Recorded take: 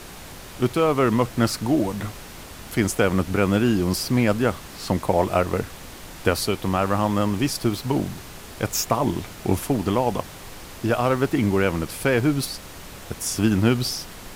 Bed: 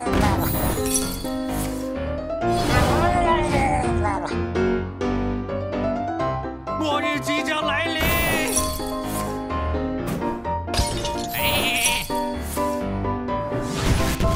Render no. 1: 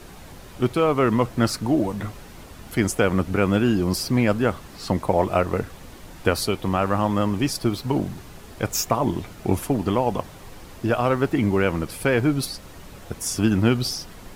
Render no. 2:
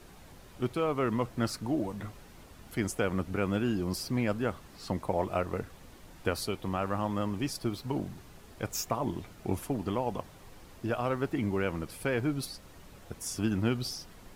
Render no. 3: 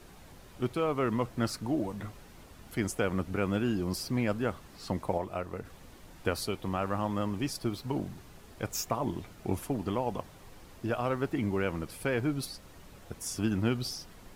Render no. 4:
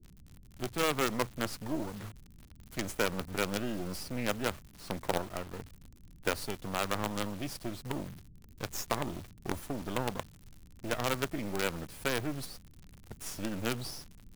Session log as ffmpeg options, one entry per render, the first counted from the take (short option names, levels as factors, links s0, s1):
-af "afftdn=nr=7:nf=-40"
-af "volume=0.316"
-filter_complex "[0:a]asplit=3[s0][s1][s2];[s0]atrim=end=5.182[s3];[s1]atrim=start=5.178:end=5.652,asetpts=PTS-STARTPTS,volume=0.562[s4];[s2]atrim=start=5.648[s5];[s3][s4]acrossfade=d=0.004:c1=hsin:c2=hsin[s6];[s6][s5]acrossfade=d=0.004:c1=hsin:c2=hsin"
-filter_complex "[0:a]acrossover=split=260[s0][s1];[s0]asoftclip=type=tanh:threshold=0.0126[s2];[s1]acrusher=bits=5:dc=4:mix=0:aa=0.000001[s3];[s2][s3]amix=inputs=2:normalize=0"